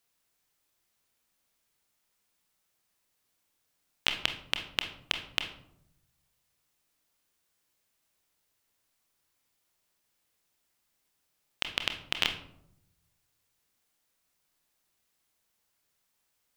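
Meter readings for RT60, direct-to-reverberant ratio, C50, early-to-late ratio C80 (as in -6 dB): 0.75 s, 6.0 dB, 10.0 dB, 13.5 dB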